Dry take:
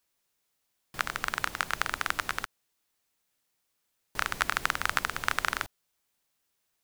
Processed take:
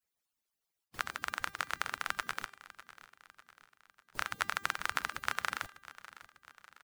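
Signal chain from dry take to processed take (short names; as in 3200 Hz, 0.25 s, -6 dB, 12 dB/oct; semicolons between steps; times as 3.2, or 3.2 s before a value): median-filter separation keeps percussive; de-hum 396.8 Hz, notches 31; on a send: feedback echo 0.598 s, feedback 51%, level -17.5 dB; on the sum: gain -5.5 dB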